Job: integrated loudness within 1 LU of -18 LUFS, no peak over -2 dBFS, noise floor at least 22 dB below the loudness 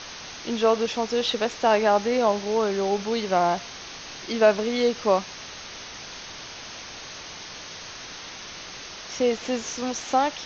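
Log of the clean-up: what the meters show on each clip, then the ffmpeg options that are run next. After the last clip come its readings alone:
noise floor -40 dBFS; noise floor target -46 dBFS; loudness -24.0 LUFS; peak -6.5 dBFS; loudness target -18.0 LUFS
-> -af "afftdn=nr=6:nf=-40"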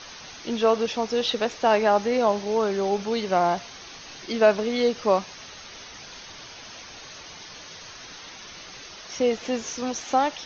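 noise floor -43 dBFS; noise floor target -46 dBFS
-> -af "afftdn=nr=6:nf=-43"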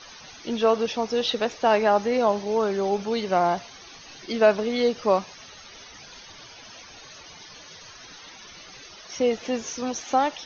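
noise floor -46 dBFS; loudness -24.0 LUFS; peak -6.5 dBFS; loudness target -18.0 LUFS
-> -af "volume=6dB,alimiter=limit=-2dB:level=0:latency=1"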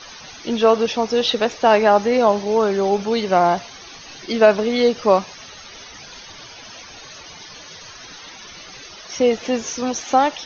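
loudness -18.0 LUFS; peak -2.0 dBFS; noise floor -40 dBFS

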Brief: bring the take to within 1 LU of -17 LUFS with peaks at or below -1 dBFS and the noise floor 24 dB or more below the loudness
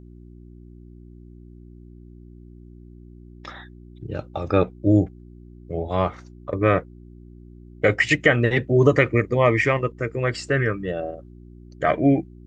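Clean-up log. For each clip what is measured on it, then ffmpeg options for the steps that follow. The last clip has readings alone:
hum 60 Hz; harmonics up to 360 Hz; hum level -43 dBFS; loudness -21.5 LUFS; peak -3.5 dBFS; loudness target -17.0 LUFS
-> -af "bandreject=f=60:t=h:w=4,bandreject=f=120:t=h:w=4,bandreject=f=180:t=h:w=4,bandreject=f=240:t=h:w=4,bandreject=f=300:t=h:w=4,bandreject=f=360:t=h:w=4"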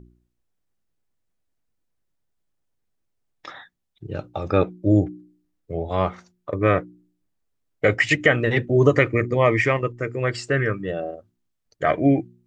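hum none; loudness -21.5 LUFS; peak -3.5 dBFS; loudness target -17.0 LUFS
-> -af "volume=4.5dB,alimiter=limit=-1dB:level=0:latency=1"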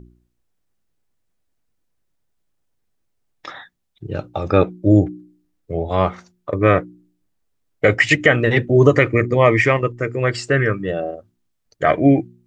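loudness -17.5 LUFS; peak -1.0 dBFS; noise floor -70 dBFS

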